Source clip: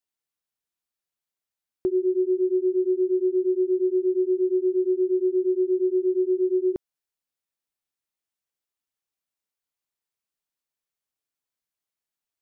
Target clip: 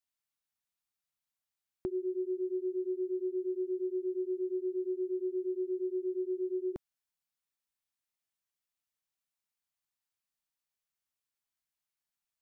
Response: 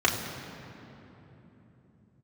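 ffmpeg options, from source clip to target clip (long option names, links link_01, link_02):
-af "equalizer=frequency=400:width_type=o:width=0.9:gain=-10.5,volume=-2dB"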